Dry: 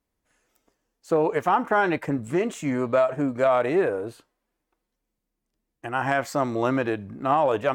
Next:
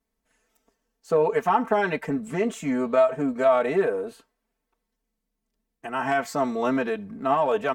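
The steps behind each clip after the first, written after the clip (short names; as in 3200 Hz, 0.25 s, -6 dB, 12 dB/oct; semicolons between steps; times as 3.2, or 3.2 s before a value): comb 4.5 ms, depth 92%; gain -3 dB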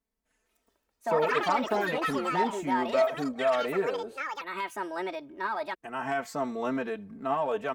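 echoes that change speed 0.275 s, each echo +6 st, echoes 3; gain -6.5 dB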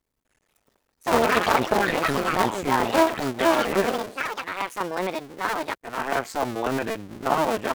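cycle switcher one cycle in 2, muted; gain +8.5 dB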